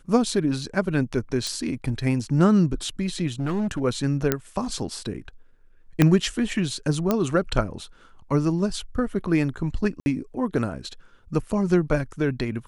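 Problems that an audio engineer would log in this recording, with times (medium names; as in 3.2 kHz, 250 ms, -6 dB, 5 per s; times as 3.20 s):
1.47 s: pop
3.39–3.82 s: clipped -22 dBFS
4.32 s: pop -6 dBFS
6.02 s: pop -4 dBFS
7.11 s: pop -8 dBFS
10.00–10.06 s: dropout 61 ms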